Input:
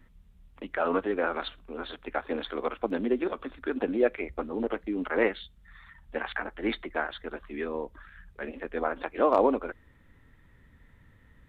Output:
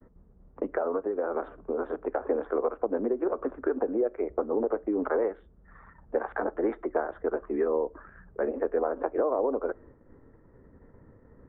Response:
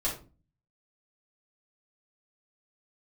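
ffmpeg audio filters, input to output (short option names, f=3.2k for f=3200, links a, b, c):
-filter_complex "[0:a]lowpass=f=1.4k:w=0.5412,lowpass=f=1.4k:w=1.3066,agate=range=-33dB:threshold=-53dB:ratio=3:detection=peak,equalizer=f=430:w=0.77:g=14.5,asettb=1/sr,asplit=3[a][b][c];[a]atrim=end=0.644[d];[b]atrim=start=0.64:end=2.21,asetpts=PTS-STARTPTS,afade=t=in:d=0.004:c=qsin,afade=t=out:st=1.566:d=0.004:c=qsin,acompressor=threshold=-25dB:ratio=6[e];[c]atrim=start=2.206[f];[d][e]acrossfade=d=0.004:c1=hsin:c2=qsin[g];[g][f]acrossfade=d=0.004:c1=qsin:c2=hsin,alimiter=limit=-11dB:level=0:latency=1:release=372,acrossover=split=81|610[h][i][j];[h]acompressor=threshold=-56dB:ratio=4[k];[i]acompressor=threshold=-33dB:ratio=4[l];[j]acompressor=threshold=-32dB:ratio=4[m];[k][l][m]amix=inputs=3:normalize=0,asplit=2[n][o];[1:a]atrim=start_sample=2205[p];[o][p]afir=irnorm=-1:irlink=0,volume=-28.5dB[q];[n][q]amix=inputs=2:normalize=0,volume=2.5dB"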